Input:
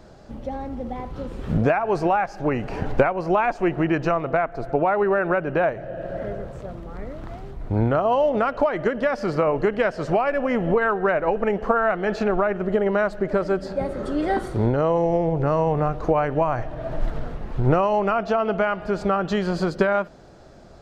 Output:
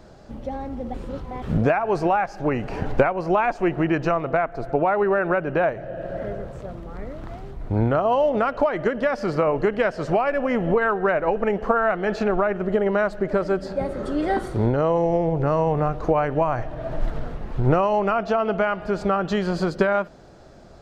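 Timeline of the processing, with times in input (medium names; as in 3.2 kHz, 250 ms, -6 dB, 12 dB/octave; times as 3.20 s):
0.94–1.42 s: reverse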